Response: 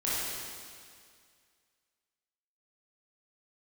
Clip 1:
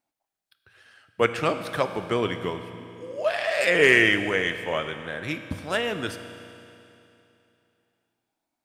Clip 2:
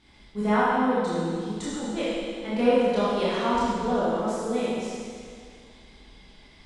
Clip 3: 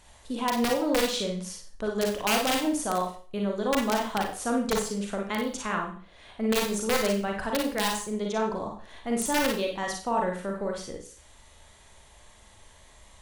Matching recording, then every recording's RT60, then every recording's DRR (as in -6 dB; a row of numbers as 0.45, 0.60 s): 2; 2.9, 2.1, 0.40 s; 9.0, -9.5, 0.5 dB